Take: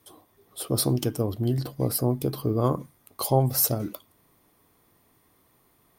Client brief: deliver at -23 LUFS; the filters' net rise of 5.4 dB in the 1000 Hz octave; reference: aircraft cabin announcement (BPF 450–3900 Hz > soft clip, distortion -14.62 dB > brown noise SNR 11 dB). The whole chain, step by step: BPF 450–3900 Hz; bell 1000 Hz +7.5 dB; soft clip -14.5 dBFS; brown noise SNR 11 dB; gain +9 dB

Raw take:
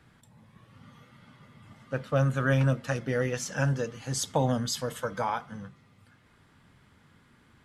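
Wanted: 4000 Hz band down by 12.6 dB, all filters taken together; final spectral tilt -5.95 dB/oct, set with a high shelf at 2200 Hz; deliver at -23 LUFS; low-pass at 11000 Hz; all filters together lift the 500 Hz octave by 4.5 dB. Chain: LPF 11000 Hz; bell 500 Hz +5.5 dB; high shelf 2200 Hz -8.5 dB; bell 4000 Hz -8 dB; gain +5 dB

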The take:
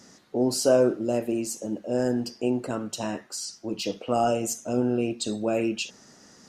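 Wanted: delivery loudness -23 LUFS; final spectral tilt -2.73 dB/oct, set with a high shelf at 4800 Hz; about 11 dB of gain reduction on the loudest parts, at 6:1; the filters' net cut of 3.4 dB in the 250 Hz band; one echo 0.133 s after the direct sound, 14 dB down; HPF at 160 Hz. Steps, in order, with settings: HPF 160 Hz; bell 250 Hz -3.5 dB; high shelf 4800 Hz +5 dB; compressor 6:1, threshold -28 dBFS; echo 0.133 s -14 dB; gain +10 dB

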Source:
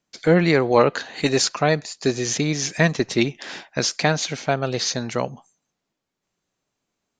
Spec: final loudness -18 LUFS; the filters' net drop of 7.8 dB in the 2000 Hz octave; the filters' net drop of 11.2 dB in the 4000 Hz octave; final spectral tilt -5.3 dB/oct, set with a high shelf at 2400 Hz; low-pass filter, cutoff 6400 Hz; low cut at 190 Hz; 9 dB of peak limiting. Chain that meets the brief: HPF 190 Hz; LPF 6400 Hz; bell 2000 Hz -5.5 dB; high shelf 2400 Hz -6 dB; bell 4000 Hz -6 dB; gain +9.5 dB; limiter -4.5 dBFS

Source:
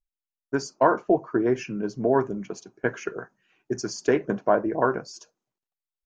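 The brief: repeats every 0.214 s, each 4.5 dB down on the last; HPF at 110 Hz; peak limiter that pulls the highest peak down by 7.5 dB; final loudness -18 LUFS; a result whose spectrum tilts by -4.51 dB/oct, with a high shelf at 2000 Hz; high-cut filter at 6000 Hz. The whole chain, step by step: HPF 110 Hz; LPF 6000 Hz; high shelf 2000 Hz +4 dB; limiter -13.5 dBFS; feedback echo 0.214 s, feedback 60%, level -4.5 dB; gain +8.5 dB

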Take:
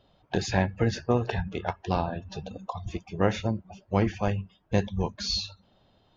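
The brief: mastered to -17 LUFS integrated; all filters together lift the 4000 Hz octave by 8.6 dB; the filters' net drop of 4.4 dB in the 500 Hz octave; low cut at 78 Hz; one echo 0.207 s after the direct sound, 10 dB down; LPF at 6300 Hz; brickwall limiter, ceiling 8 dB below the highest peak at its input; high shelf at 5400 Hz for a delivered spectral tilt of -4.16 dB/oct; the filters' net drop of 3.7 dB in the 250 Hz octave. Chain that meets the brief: HPF 78 Hz; LPF 6300 Hz; bell 250 Hz -4 dB; bell 500 Hz -4.5 dB; bell 4000 Hz +7.5 dB; high shelf 5400 Hz +7 dB; limiter -18.5 dBFS; echo 0.207 s -10 dB; gain +14.5 dB

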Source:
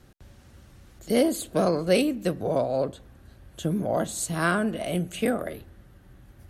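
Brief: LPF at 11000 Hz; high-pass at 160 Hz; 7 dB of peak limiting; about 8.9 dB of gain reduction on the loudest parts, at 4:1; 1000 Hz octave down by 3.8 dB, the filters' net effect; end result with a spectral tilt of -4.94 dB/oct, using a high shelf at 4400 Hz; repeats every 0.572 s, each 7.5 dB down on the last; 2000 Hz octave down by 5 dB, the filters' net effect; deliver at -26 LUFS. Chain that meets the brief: HPF 160 Hz; LPF 11000 Hz; bell 1000 Hz -4.5 dB; bell 2000 Hz -4.5 dB; high shelf 4400 Hz -3.5 dB; compressor 4:1, threshold -28 dBFS; limiter -25.5 dBFS; feedback echo 0.572 s, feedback 42%, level -7.5 dB; gain +9.5 dB

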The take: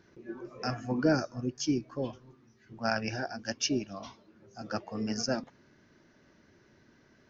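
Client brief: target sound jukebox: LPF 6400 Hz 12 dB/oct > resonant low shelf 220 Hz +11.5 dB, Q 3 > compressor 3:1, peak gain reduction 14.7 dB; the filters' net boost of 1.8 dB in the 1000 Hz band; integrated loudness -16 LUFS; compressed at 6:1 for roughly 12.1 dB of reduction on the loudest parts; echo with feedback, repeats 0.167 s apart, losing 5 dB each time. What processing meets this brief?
bell 1000 Hz +4 dB; compressor 6:1, threshold -33 dBFS; LPF 6400 Hz 12 dB/oct; resonant low shelf 220 Hz +11.5 dB, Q 3; feedback echo 0.167 s, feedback 56%, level -5 dB; compressor 3:1, threshold -40 dBFS; gain +26 dB

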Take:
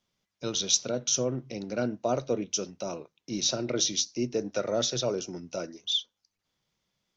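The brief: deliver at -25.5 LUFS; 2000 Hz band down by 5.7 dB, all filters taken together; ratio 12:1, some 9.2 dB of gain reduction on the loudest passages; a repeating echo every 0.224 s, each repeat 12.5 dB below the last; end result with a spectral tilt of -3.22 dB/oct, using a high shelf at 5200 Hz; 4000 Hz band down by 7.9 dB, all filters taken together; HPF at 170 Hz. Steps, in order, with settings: HPF 170 Hz; bell 2000 Hz -6.5 dB; bell 4000 Hz -5 dB; high shelf 5200 Hz -7 dB; compressor 12:1, threshold -33 dBFS; feedback echo 0.224 s, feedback 24%, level -12.5 dB; gain +13 dB

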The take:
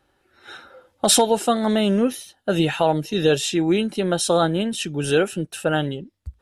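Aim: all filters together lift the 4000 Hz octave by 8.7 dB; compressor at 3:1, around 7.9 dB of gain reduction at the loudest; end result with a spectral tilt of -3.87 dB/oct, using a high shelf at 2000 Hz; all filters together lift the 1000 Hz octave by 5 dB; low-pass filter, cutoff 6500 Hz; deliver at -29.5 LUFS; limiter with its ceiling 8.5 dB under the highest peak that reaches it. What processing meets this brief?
LPF 6500 Hz; bell 1000 Hz +5.5 dB; high shelf 2000 Hz +4.5 dB; bell 4000 Hz +6.5 dB; compressor 3:1, threshold -18 dBFS; gain -5.5 dB; limiter -19 dBFS

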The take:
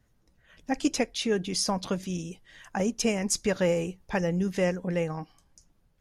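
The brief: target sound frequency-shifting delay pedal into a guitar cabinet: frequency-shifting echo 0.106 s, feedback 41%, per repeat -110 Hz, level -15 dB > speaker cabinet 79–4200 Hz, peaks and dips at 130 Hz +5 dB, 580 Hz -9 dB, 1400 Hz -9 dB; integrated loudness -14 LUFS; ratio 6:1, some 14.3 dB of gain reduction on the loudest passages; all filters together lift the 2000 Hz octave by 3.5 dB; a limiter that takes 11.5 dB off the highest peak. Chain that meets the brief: bell 2000 Hz +6 dB; compressor 6:1, threshold -36 dBFS; limiter -31.5 dBFS; frequency-shifting echo 0.106 s, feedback 41%, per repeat -110 Hz, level -15 dB; speaker cabinet 79–4200 Hz, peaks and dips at 130 Hz +5 dB, 580 Hz -9 dB, 1400 Hz -9 dB; gain +29.5 dB

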